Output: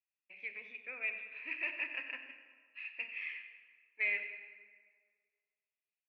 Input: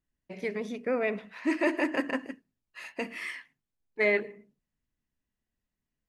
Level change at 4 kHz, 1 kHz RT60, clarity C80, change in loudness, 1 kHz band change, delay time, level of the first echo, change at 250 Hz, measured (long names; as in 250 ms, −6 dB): −6.5 dB, 1.8 s, 8.5 dB, −8.5 dB, −19.5 dB, 95 ms, −14.5 dB, −30.5 dB